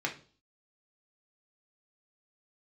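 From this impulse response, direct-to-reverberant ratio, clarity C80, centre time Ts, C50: −1.0 dB, 18.0 dB, 14 ms, 12.0 dB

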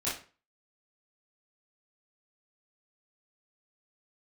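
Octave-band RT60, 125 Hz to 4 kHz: 0.40, 0.35, 0.40, 0.35, 0.35, 0.30 seconds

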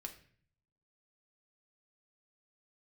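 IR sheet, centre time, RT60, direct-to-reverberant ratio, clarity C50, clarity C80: 11 ms, 0.50 s, 3.0 dB, 11.5 dB, 15.5 dB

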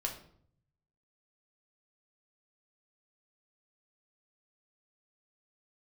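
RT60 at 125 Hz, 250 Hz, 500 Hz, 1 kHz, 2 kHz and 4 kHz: 1.3, 0.85, 0.65, 0.55, 0.45, 0.45 seconds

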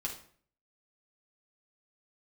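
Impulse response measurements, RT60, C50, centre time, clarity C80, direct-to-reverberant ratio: 0.50 s, 7.5 dB, 19 ms, 13.0 dB, −2.5 dB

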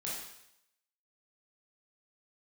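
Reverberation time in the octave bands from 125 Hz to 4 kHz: 0.80, 0.70, 0.75, 0.80, 0.80, 0.80 seconds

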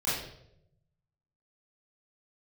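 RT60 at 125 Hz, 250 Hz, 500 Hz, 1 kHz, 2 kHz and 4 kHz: 1.4, 0.95, 0.90, 0.65, 0.60, 0.60 seconds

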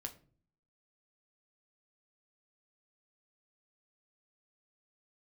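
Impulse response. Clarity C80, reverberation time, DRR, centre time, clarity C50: 19.5 dB, 0.45 s, 4.5 dB, 8 ms, 15.0 dB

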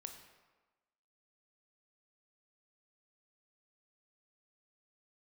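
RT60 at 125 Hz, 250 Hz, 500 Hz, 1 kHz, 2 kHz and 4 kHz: 0.95, 1.2, 1.2, 1.3, 1.1, 0.85 seconds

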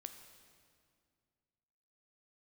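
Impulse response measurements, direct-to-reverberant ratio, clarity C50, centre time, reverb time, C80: 6.5 dB, 8.0 dB, 27 ms, 2.2 s, 9.0 dB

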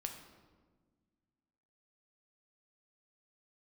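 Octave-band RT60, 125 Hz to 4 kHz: 2.2, 2.3, 1.7, 1.3, 1.0, 0.90 seconds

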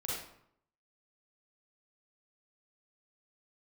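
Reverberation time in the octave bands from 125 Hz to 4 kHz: 0.85, 0.75, 0.70, 0.70, 0.60, 0.45 seconds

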